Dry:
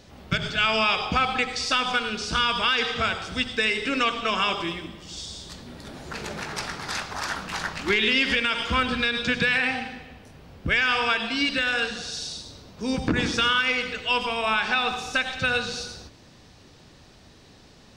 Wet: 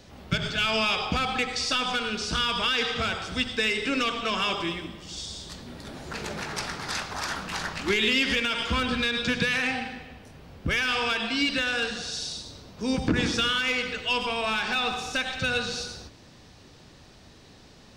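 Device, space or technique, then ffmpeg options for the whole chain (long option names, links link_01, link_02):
one-band saturation: -filter_complex "[0:a]acrossover=split=560|2700[link_01][link_02][link_03];[link_02]asoftclip=type=tanh:threshold=-27.5dB[link_04];[link_01][link_04][link_03]amix=inputs=3:normalize=0"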